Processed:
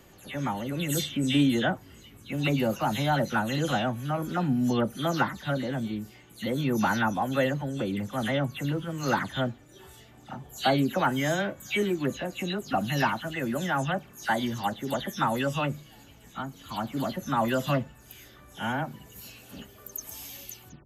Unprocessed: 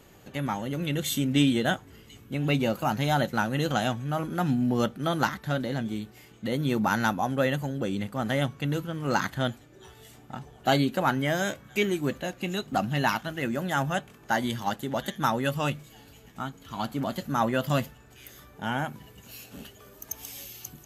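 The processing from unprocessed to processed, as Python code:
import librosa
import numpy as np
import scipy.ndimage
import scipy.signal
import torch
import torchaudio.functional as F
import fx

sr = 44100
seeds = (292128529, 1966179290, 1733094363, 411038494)

y = fx.spec_delay(x, sr, highs='early', ms=159)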